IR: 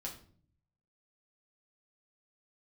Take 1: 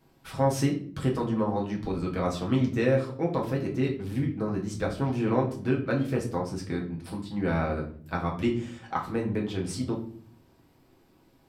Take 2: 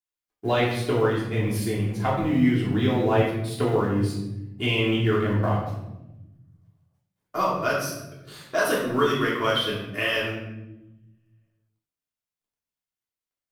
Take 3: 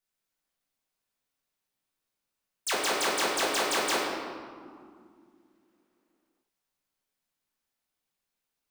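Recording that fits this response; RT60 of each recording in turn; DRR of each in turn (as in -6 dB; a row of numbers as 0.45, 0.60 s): 1; 0.50, 0.95, 2.2 s; -2.5, -6.0, -5.5 dB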